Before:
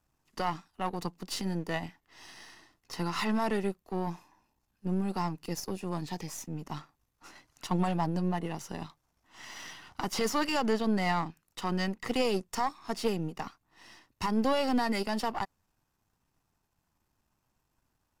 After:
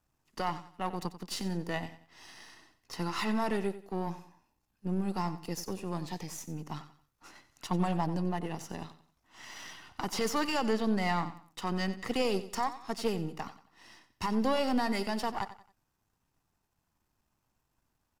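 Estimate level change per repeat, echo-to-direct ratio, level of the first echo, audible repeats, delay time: −9.5 dB, −13.5 dB, −14.0 dB, 3, 91 ms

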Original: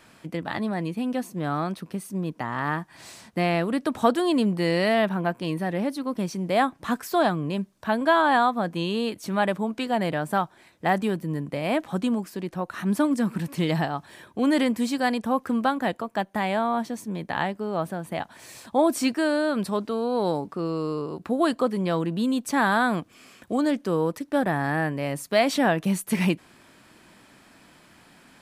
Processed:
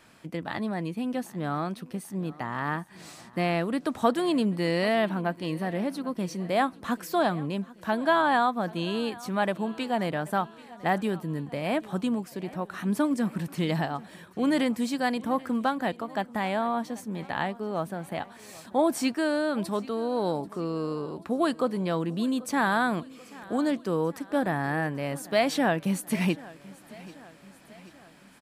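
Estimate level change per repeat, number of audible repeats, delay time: −5.0 dB, 3, 786 ms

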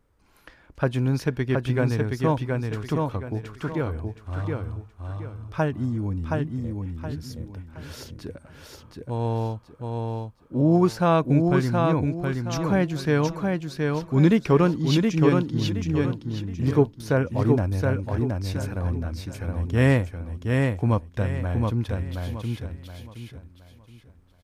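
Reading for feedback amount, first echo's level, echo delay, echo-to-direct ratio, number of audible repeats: 31%, −3.5 dB, 721 ms, −3.0 dB, 4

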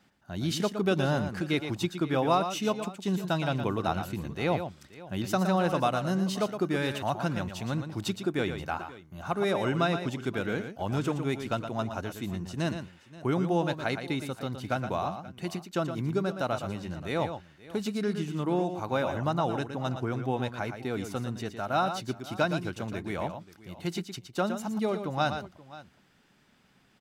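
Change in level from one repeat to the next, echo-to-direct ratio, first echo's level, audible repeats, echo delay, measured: repeats not evenly spaced, −8.0 dB, −8.5 dB, 2, 116 ms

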